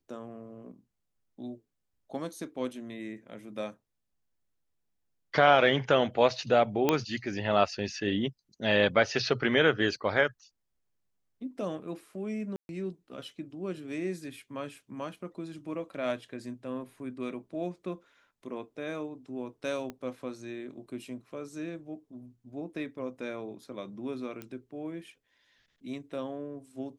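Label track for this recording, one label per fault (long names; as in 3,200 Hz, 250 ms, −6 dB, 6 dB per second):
6.890000	6.890000	click −10 dBFS
12.560000	12.690000	drop-out 131 ms
19.900000	19.900000	click −25 dBFS
24.420000	24.420000	click −25 dBFS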